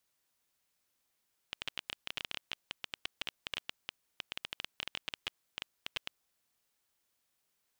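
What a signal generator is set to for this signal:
Geiger counter clicks 13 per second −19 dBFS 4.59 s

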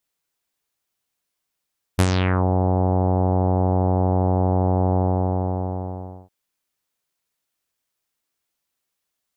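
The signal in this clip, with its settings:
subtractive voice saw F#2 24 dB per octave, low-pass 810 Hz, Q 2.5, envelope 4 octaves, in 0.46 s, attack 17 ms, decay 0.06 s, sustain −6 dB, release 1.32 s, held 2.99 s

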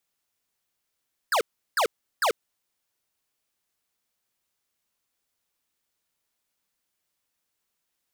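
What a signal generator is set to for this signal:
repeated falling chirps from 1,800 Hz, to 390 Hz, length 0.09 s square, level −22 dB, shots 3, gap 0.36 s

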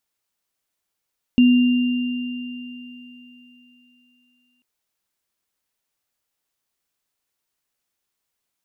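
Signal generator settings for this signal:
inharmonic partials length 3.24 s, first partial 247 Hz, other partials 2,790 Hz, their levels −15.5 dB, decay 3.27 s, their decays 4.60 s, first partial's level −9 dB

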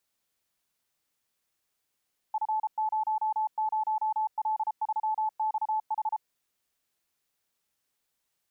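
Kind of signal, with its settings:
Morse code "F00L3XH" 33 words per minute 867 Hz −25 dBFS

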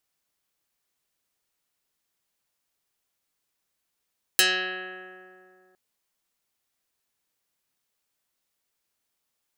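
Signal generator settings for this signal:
Karplus-Strong string F#3, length 1.36 s, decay 2.65 s, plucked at 0.16, dark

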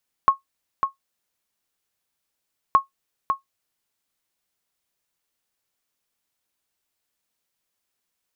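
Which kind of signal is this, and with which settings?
ping with an echo 1,090 Hz, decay 0.13 s, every 2.47 s, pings 2, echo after 0.55 s, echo −6.5 dB −6 dBFS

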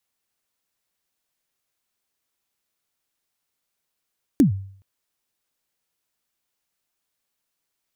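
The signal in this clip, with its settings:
synth kick length 0.42 s, from 320 Hz, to 97 Hz, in 116 ms, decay 0.56 s, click on, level −8.5 dB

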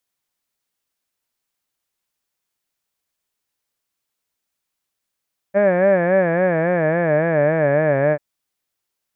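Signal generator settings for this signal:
vowel from formants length 2.64 s, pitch 194 Hz, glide −5.5 semitones, vibrato 3.6 Hz, vibrato depth 1.2 semitones, F1 590 Hz, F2 1,700 Hz, F3 2,300 Hz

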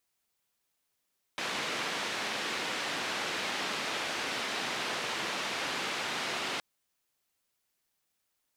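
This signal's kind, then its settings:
band-limited noise 200–3,300 Hz, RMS −34.5 dBFS 5.22 s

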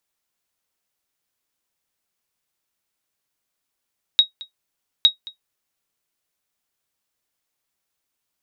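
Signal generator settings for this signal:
ping with an echo 3,790 Hz, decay 0.12 s, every 0.86 s, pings 2, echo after 0.22 s, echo −22 dB −4 dBFS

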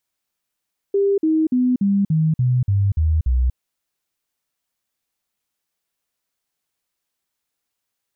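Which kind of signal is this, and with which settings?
stepped sweep 398 Hz down, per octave 3, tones 9, 0.24 s, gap 0.05 s −14 dBFS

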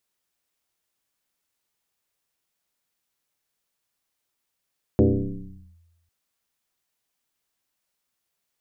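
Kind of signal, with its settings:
two-operator FM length 1.10 s, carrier 84.1 Hz, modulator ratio 1.19, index 4.1, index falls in 0.80 s linear, decay 1.13 s, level −11.5 dB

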